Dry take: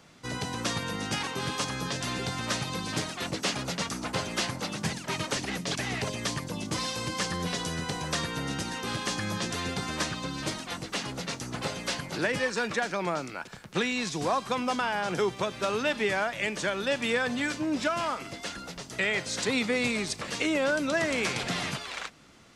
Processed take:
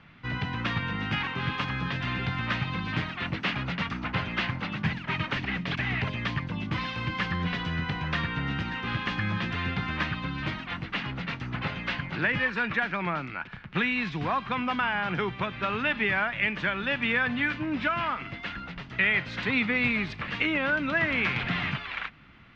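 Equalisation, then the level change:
low-pass filter 2,700 Hz 24 dB per octave
parametric band 500 Hz −14.5 dB 2 octaves
+8.0 dB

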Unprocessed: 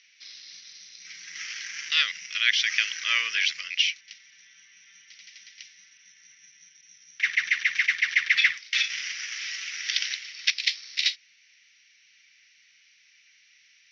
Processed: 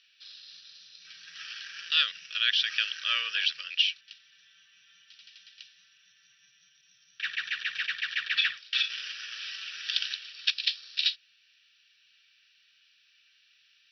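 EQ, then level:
phaser with its sweep stopped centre 1,400 Hz, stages 8
0.0 dB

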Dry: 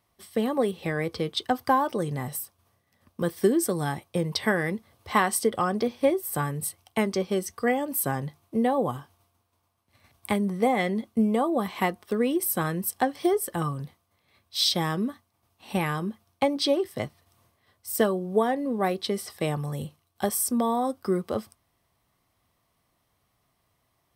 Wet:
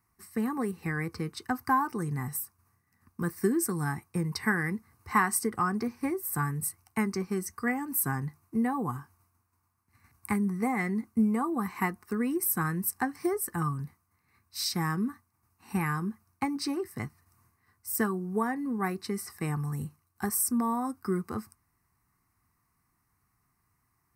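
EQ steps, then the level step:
phaser with its sweep stopped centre 1,400 Hz, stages 4
0.0 dB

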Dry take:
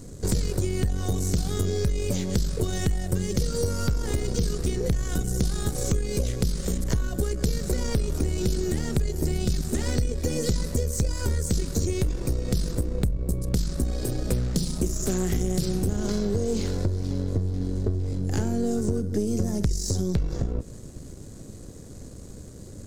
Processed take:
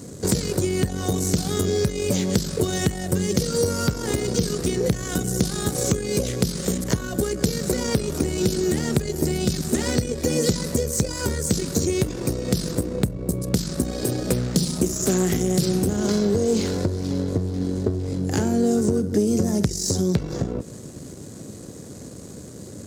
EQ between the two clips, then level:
high-pass filter 130 Hz 12 dB per octave
+6.5 dB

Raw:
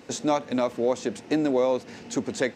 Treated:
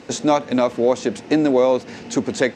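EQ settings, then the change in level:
Bessel low-pass filter 8,300 Hz, order 2
+7.0 dB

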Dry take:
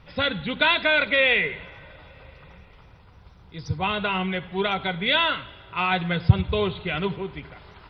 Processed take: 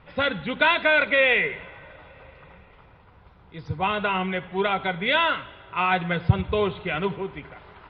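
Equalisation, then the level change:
high-frequency loss of the air 370 metres
low-shelf EQ 250 Hz −9 dB
+4.5 dB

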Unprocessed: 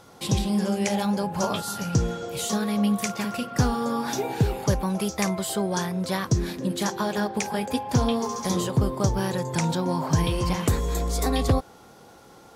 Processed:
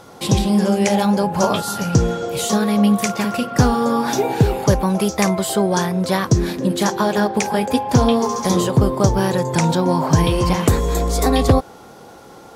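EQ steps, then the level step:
parametric band 510 Hz +3.5 dB 2.9 octaves
+6.0 dB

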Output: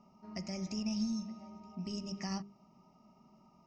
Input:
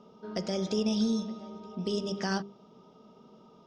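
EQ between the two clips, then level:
graphic EQ with 10 bands 125 Hz −4 dB, 250 Hz −4 dB, 1,000 Hz −6 dB, 4,000 Hz −10 dB
dynamic equaliser 770 Hz, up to −5 dB, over −49 dBFS, Q 1.3
phaser with its sweep stopped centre 2,300 Hz, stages 8
+1.0 dB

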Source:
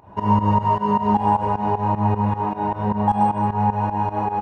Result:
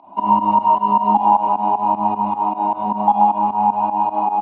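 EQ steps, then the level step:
loudspeaker in its box 190–3,300 Hz, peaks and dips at 270 Hz +5 dB, 700 Hz +7 dB, 1,000 Hz +5 dB
high-shelf EQ 2,100 Hz +8.5 dB
phaser with its sweep stopped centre 460 Hz, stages 6
0.0 dB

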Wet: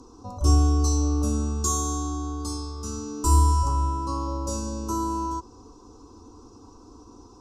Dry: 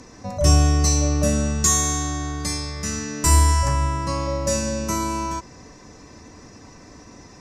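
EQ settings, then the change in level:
Butterworth band-reject 1,800 Hz, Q 1.8
high-shelf EQ 2,100 Hz −8.5 dB
phaser with its sweep stopped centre 610 Hz, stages 6
0.0 dB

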